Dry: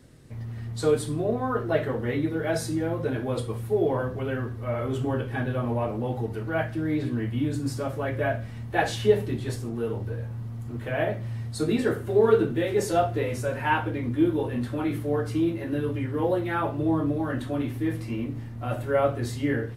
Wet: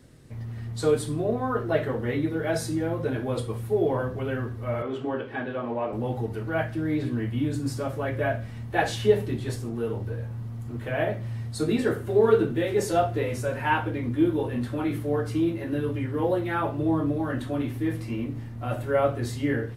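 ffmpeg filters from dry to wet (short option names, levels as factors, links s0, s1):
-filter_complex "[0:a]asettb=1/sr,asplit=3[s0][s1][s2];[s0]atrim=end=4.824[s3];[s1]atrim=start=4.82:end=5.93,asetpts=PTS-STARTPTS,afade=t=in:d=0.004:c=qsin,afade=t=out:st=1.106:d=0.004:c=qsin,acrossover=split=210 4600:gain=0.141 1 0.141[s4][s5][s6];[s4][s5][s6]amix=inputs=3:normalize=0[s7];[s2]atrim=start=5.926[s8];[s3][s7]acrossfade=d=0.004:c1=hsin:c2=qsin[s9];[s9][s8]acrossfade=d=0.004:c1=qsin:c2=hsin"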